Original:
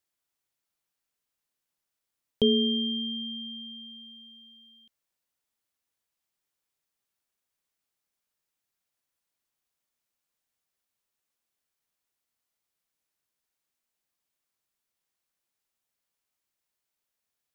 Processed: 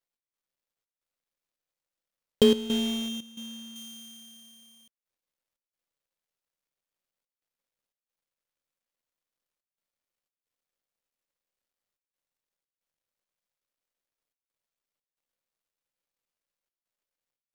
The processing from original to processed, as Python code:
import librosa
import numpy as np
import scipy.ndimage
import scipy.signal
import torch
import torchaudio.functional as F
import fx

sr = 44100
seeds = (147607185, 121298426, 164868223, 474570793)

y = fx.dead_time(x, sr, dead_ms=0.082)
y = fx.high_shelf(y, sr, hz=3300.0, db=-9.5, at=(2.43, 3.76))
y = fx.step_gate(y, sr, bpm=89, pattern='x.xxx.xxxxxxxx', floor_db=-12.0, edge_ms=4.5)
y = fx.peak_eq(y, sr, hz=530.0, db=7.5, octaves=0.31)
y = y * 10.0 ** (3.5 / 20.0)